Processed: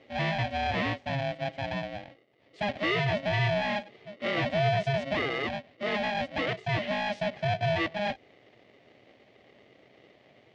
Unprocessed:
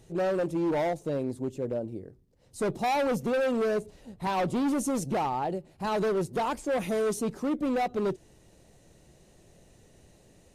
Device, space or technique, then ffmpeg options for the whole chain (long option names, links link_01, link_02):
ring modulator pedal into a guitar cabinet: -af "aeval=exprs='val(0)*sgn(sin(2*PI*410*n/s))':channel_layout=same,highpass=110,equalizer=frequency=120:width_type=q:width=4:gain=7,equalizer=frequency=650:width_type=q:width=4:gain=7,equalizer=frequency=970:width_type=q:width=4:gain=-9,equalizer=frequency=1400:width_type=q:width=4:gain=-9,equalizer=frequency=2000:width_type=q:width=4:gain=9,equalizer=frequency=3000:width_type=q:width=4:gain=4,lowpass=frequency=4100:width=0.5412,lowpass=frequency=4100:width=1.3066,volume=-1.5dB"